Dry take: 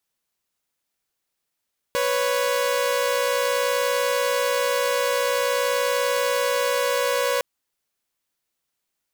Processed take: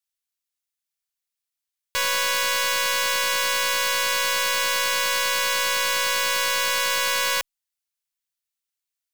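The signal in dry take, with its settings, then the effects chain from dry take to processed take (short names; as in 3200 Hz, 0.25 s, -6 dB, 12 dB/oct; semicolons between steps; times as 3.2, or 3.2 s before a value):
chord B4/C#5 saw, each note -20.5 dBFS 5.46 s
passive tone stack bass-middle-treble 10-0-10; sample leveller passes 3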